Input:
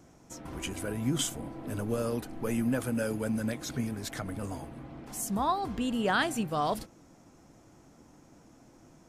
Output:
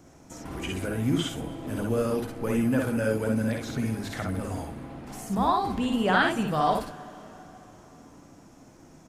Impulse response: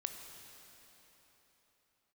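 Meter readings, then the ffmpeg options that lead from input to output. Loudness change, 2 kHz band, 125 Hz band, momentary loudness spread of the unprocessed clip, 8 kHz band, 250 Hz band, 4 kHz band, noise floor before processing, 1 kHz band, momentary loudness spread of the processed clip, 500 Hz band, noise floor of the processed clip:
+5.0 dB, +5.5 dB, +5.0 dB, 13 LU, −4.5 dB, +4.5 dB, +2.5 dB, −58 dBFS, +5.5 dB, 16 LU, +5.5 dB, −53 dBFS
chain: -filter_complex "[0:a]acrossover=split=3600[link_01][link_02];[link_02]acompressor=threshold=-48dB:ratio=4:attack=1:release=60[link_03];[link_01][link_03]amix=inputs=2:normalize=0,aecho=1:1:53|64:0.501|0.596,asplit=2[link_04][link_05];[1:a]atrim=start_sample=2205[link_06];[link_05][link_06]afir=irnorm=-1:irlink=0,volume=-6dB[link_07];[link_04][link_07]amix=inputs=2:normalize=0"

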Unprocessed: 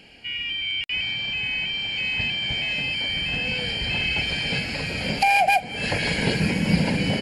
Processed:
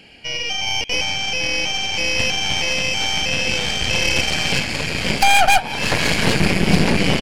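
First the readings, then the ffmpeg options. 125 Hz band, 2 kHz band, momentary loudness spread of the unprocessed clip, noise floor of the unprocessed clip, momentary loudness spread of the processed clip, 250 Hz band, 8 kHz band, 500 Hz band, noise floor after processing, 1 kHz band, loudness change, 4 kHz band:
+4.0 dB, +4.5 dB, 6 LU, −35 dBFS, 6 LU, +4.5 dB, +16.0 dB, +7.0 dB, −27 dBFS, +4.5 dB, +5.0 dB, +5.5 dB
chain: -filter_complex "[0:a]asplit=7[link_01][link_02][link_03][link_04][link_05][link_06][link_07];[link_02]adelay=172,afreqshift=66,volume=-18.5dB[link_08];[link_03]adelay=344,afreqshift=132,volume=-22.4dB[link_09];[link_04]adelay=516,afreqshift=198,volume=-26.3dB[link_10];[link_05]adelay=688,afreqshift=264,volume=-30.1dB[link_11];[link_06]adelay=860,afreqshift=330,volume=-34dB[link_12];[link_07]adelay=1032,afreqshift=396,volume=-37.9dB[link_13];[link_01][link_08][link_09][link_10][link_11][link_12][link_13]amix=inputs=7:normalize=0,aeval=exprs='0.447*(cos(1*acos(clip(val(0)/0.447,-1,1)))-cos(1*PI/2))+0.0891*(cos(8*acos(clip(val(0)/0.447,-1,1)))-cos(8*PI/2))':channel_layout=same,volume=3.5dB"

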